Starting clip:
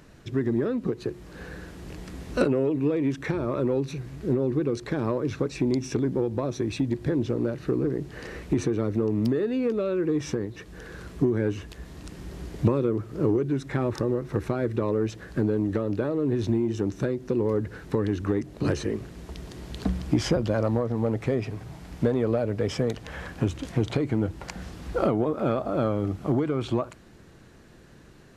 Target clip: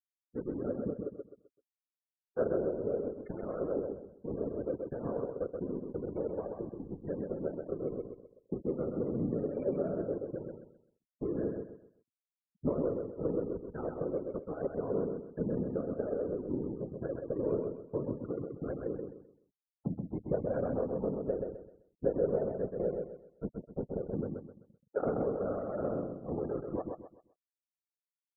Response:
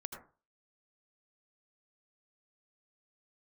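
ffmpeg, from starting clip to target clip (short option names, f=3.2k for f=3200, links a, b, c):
-filter_complex "[0:a]highpass=180,equalizer=f=200:t=q:w=4:g=9,equalizer=f=290:t=q:w=4:g=-10,equalizer=f=480:t=q:w=4:g=6,equalizer=f=1.4k:t=q:w=4:g=5,equalizer=f=2.2k:t=q:w=4:g=5,lowpass=f=3.1k:w=0.5412,lowpass=f=3.1k:w=1.3066,bandreject=f=50:t=h:w=6,bandreject=f=100:t=h:w=6,bandreject=f=150:t=h:w=6,bandreject=f=200:t=h:w=6,bandreject=f=250:t=h:w=6,afftdn=nr=28:nf=-30,acrossover=split=1200[a][b];[b]acompressor=threshold=-55dB:ratio=10[c];[a][c]amix=inputs=2:normalize=0,afftfilt=real='hypot(re,im)*cos(2*PI*random(0))':imag='hypot(re,im)*sin(2*PI*random(1))':win_size=512:overlap=0.75,aeval=exprs='sgn(val(0))*max(abs(val(0))-0.00562,0)':c=same,afftfilt=real='re*gte(hypot(re,im),0.00794)':imag='im*gte(hypot(re,im),0.00794)':win_size=1024:overlap=0.75,aecho=1:1:129|258|387|516:0.596|0.185|0.0572|0.0177,adynamicequalizer=threshold=0.00631:dfrequency=1500:dqfactor=0.7:tfrequency=1500:tqfactor=0.7:attack=5:release=100:ratio=0.375:range=2.5:mode=cutabove:tftype=highshelf,volume=-3dB"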